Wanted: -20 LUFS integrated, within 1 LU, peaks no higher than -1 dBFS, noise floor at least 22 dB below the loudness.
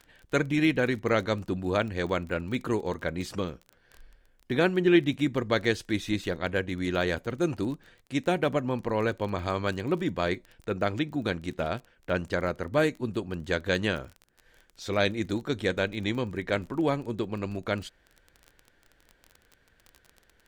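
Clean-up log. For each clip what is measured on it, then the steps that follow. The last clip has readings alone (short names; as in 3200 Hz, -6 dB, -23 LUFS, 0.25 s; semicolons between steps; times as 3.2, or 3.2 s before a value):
ticks 21/s; loudness -29.0 LUFS; peak -9.0 dBFS; loudness target -20.0 LUFS
-> de-click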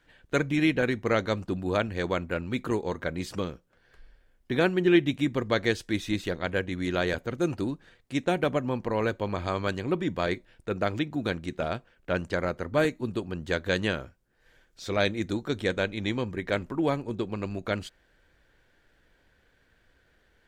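ticks 0.049/s; loudness -29.0 LUFS; peak -9.0 dBFS; loudness target -20.0 LUFS
-> gain +9 dB; limiter -1 dBFS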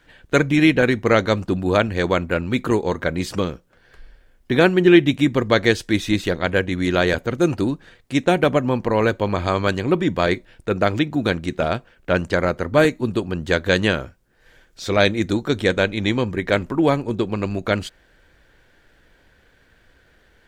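loudness -20.0 LUFS; peak -1.0 dBFS; noise floor -57 dBFS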